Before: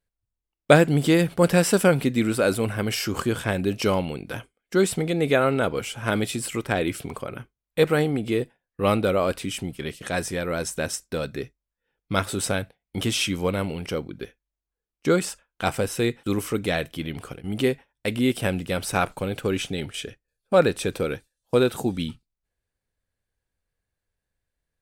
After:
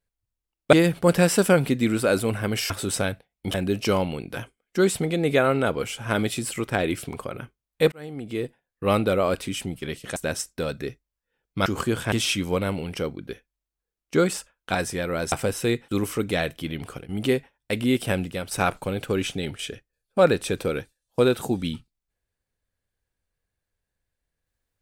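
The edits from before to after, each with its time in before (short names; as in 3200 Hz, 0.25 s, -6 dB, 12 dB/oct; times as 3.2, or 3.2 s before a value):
0.73–1.08 cut
3.05–3.51 swap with 12.2–13.04
7.89–9.04 fade in equal-power
10.13–10.7 move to 15.67
18.55–18.86 fade out, to -9 dB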